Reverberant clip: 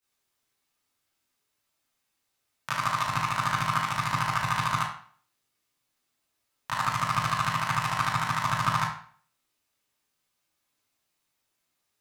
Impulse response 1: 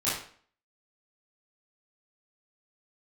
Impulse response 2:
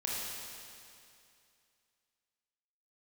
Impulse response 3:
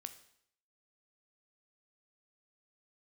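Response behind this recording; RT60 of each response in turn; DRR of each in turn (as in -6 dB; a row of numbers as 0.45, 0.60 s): 1; 0.50, 2.5, 0.70 s; -11.0, -5.0, 8.5 dB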